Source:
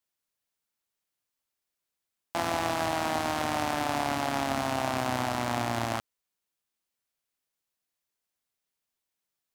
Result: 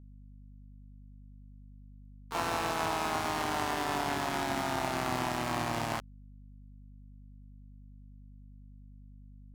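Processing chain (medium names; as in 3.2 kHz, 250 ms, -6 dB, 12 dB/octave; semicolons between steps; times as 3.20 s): word length cut 12-bit, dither none; harmony voices +5 st -4 dB, +7 st -11 dB; hum 50 Hz, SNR 15 dB; trim -4.5 dB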